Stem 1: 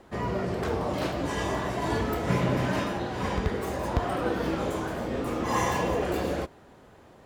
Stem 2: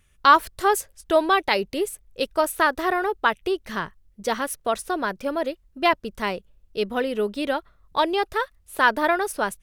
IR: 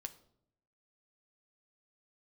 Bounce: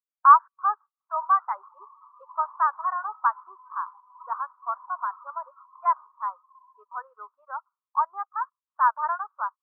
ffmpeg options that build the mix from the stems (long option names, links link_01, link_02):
-filter_complex "[0:a]volume=23.5dB,asoftclip=hard,volume=-23.5dB,acompressor=threshold=-32dB:ratio=16,crystalizer=i=5.5:c=0,adelay=1000,volume=-6dB,afade=type=out:start_time=6.21:duration=0.23:silence=0.281838,asplit=2[link_01][link_02];[link_02]volume=-3.5dB[link_03];[1:a]volume=2.5dB[link_04];[2:a]atrim=start_sample=2205[link_05];[link_03][link_05]afir=irnorm=-1:irlink=0[link_06];[link_01][link_04][link_06]amix=inputs=3:normalize=0,asuperpass=centerf=1100:order=4:qfactor=3.2,afftdn=noise_reduction=32:noise_floor=-38"